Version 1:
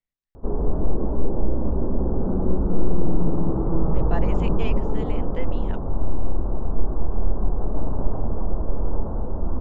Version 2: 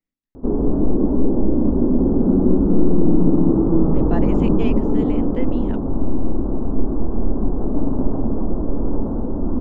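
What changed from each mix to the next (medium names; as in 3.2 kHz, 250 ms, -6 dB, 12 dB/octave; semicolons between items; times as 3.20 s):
master: add peaking EQ 270 Hz +14.5 dB 1.1 oct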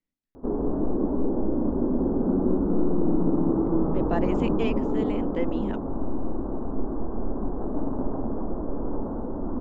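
background: add bass shelf 410 Hz -11 dB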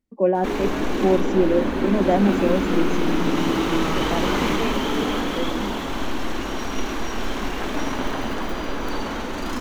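first voice: unmuted; background: remove Gaussian low-pass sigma 11 samples; reverb: on, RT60 1.4 s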